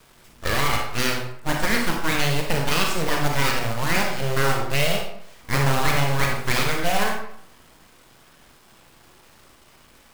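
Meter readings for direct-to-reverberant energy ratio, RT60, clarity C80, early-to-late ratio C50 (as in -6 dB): 1.0 dB, 0.70 s, 7.0 dB, 3.0 dB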